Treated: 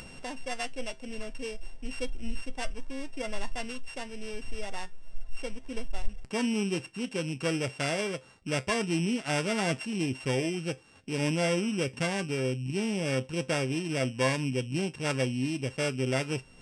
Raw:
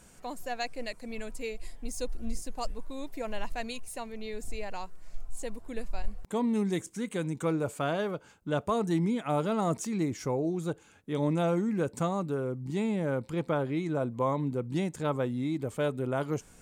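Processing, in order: sample sorter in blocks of 16 samples; downsampling 22050 Hz; notch 1200 Hz, Q 16; resonator 130 Hz, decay 0.18 s, harmonics all, mix 60%; upward compressor, threshold -41 dBFS; gain +5 dB

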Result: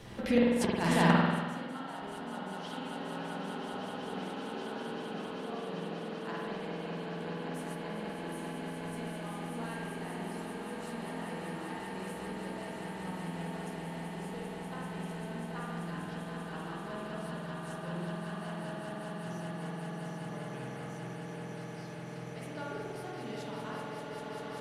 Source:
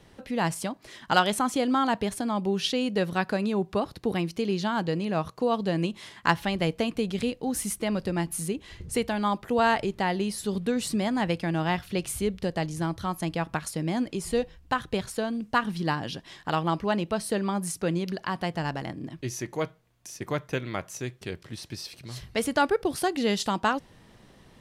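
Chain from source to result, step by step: swelling echo 0.195 s, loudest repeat 8, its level -6.5 dB; flipped gate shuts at -20 dBFS, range -28 dB; flange 0.16 Hz, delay 8.9 ms, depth 9.5 ms, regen -43%; spring tank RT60 1.5 s, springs 47 ms, chirp 30 ms, DRR -4 dB; gain +9 dB

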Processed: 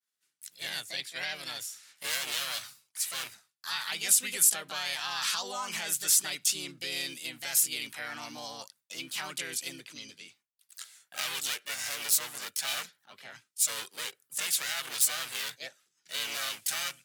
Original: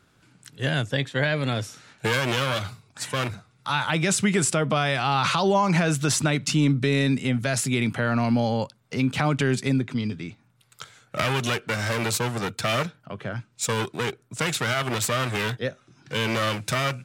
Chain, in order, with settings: differentiator; harmoniser +4 st 0 dB; expander -57 dBFS

